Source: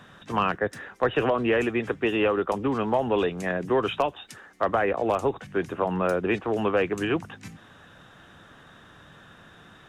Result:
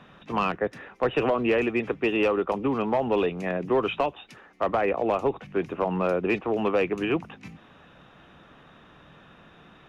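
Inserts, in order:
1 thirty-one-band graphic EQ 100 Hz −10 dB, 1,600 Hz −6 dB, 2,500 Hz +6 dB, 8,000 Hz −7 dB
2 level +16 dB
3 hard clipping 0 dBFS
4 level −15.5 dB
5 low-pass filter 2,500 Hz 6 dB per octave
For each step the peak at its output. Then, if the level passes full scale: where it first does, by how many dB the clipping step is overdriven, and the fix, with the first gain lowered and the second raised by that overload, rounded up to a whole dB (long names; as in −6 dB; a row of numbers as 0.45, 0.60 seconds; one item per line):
−11.0, +5.0, 0.0, −15.5, −15.5 dBFS
step 2, 5.0 dB
step 2 +11 dB, step 4 −10.5 dB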